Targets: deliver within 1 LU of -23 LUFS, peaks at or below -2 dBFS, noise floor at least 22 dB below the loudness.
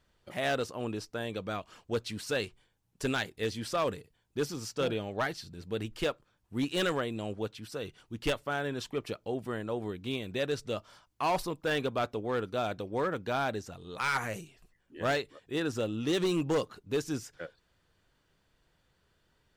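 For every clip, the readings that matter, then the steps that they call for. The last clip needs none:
clipped samples 1.2%; clipping level -23.5 dBFS; loudness -34.0 LUFS; peak level -23.5 dBFS; loudness target -23.0 LUFS
-> clip repair -23.5 dBFS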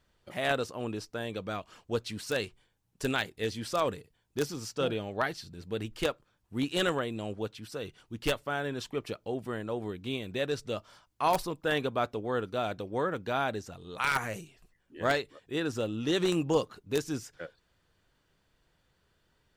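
clipped samples 0.0%; loudness -33.0 LUFS; peak level -14.5 dBFS; loudness target -23.0 LUFS
-> trim +10 dB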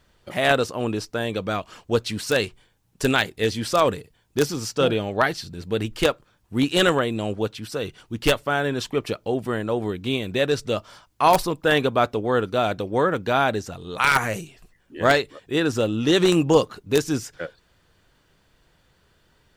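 loudness -23.0 LUFS; peak level -4.5 dBFS; noise floor -63 dBFS

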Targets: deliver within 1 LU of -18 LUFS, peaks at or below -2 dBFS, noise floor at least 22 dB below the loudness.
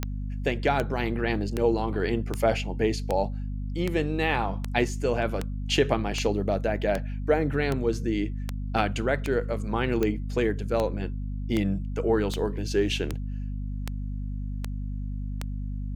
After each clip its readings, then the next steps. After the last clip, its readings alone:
clicks found 21; hum 50 Hz; highest harmonic 250 Hz; hum level -29 dBFS; loudness -28.0 LUFS; peak level -8.5 dBFS; loudness target -18.0 LUFS
-> de-click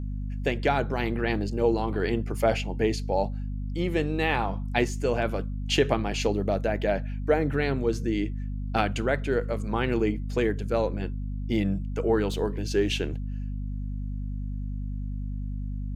clicks found 0; hum 50 Hz; highest harmonic 250 Hz; hum level -29 dBFS
-> de-hum 50 Hz, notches 5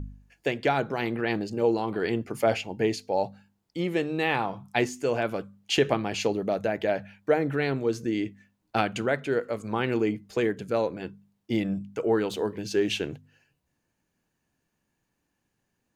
hum not found; loudness -28.0 LUFS; peak level -9.0 dBFS; loudness target -18.0 LUFS
-> trim +10 dB; peak limiter -2 dBFS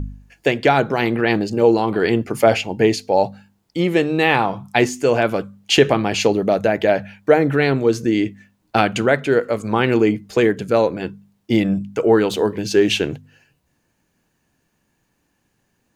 loudness -18.0 LUFS; peak level -2.0 dBFS; noise floor -68 dBFS

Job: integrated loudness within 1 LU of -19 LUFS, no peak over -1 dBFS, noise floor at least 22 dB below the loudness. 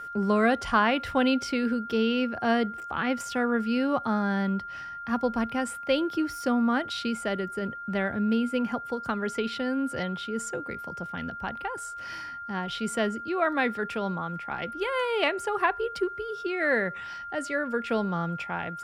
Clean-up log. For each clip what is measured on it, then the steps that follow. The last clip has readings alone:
steady tone 1.4 kHz; tone level -36 dBFS; loudness -28.5 LUFS; peak level -9.5 dBFS; loudness target -19.0 LUFS
-> band-stop 1.4 kHz, Q 30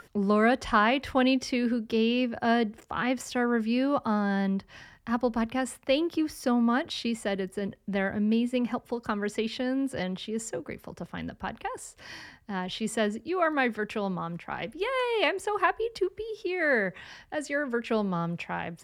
steady tone not found; loudness -28.5 LUFS; peak level -9.5 dBFS; loudness target -19.0 LUFS
-> trim +9.5 dB; peak limiter -1 dBFS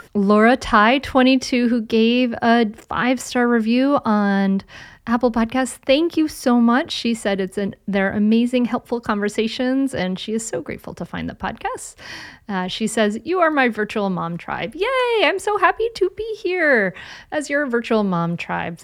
loudness -19.0 LUFS; peak level -1.0 dBFS; noise floor -48 dBFS

